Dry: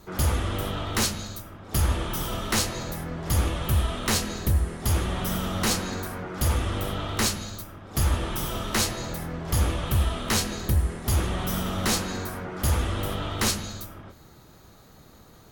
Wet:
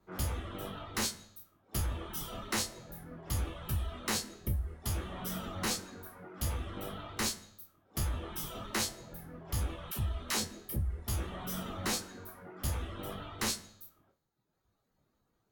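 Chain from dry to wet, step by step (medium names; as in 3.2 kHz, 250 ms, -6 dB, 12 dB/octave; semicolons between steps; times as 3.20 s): spectral sustain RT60 0.49 s; reverb removal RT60 1.4 s; de-hum 76.13 Hz, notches 28; 9.91–11.07 s: phase dispersion lows, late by 63 ms, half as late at 480 Hz; compression 3:1, threshold -25 dBFS, peak gain reduction 6 dB; three bands expanded up and down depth 70%; trim -7.5 dB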